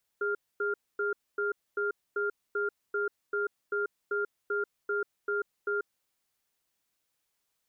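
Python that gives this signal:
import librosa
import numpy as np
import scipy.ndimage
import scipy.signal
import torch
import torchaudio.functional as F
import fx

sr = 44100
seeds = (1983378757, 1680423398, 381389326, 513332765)

y = fx.cadence(sr, length_s=5.64, low_hz=410.0, high_hz=1400.0, on_s=0.14, off_s=0.25, level_db=-30.0)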